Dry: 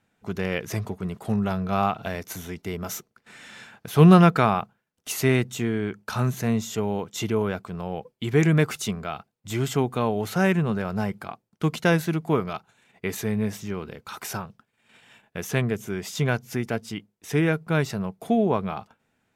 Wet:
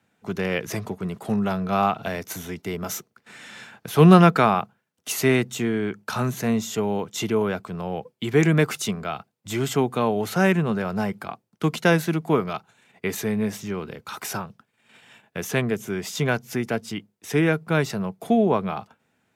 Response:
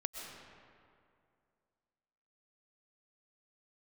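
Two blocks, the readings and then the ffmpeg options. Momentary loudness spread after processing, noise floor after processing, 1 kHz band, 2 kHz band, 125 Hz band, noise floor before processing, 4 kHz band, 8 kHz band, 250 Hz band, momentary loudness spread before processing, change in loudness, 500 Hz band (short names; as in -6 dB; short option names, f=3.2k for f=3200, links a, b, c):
14 LU, -72 dBFS, +2.5 dB, +2.5 dB, -0.5 dB, -75 dBFS, +2.5 dB, +2.5 dB, +1.5 dB, 14 LU, +1.5 dB, +2.5 dB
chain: -filter_complex "[0:a]highpass=87,acrossover=split=130|800|7100[a][b][c][d];[a]acompressor=threshold=-43dB:ratio=6[e];[e][b][c][d]amix=inputs=4:normalize=0,volume=2.5dB"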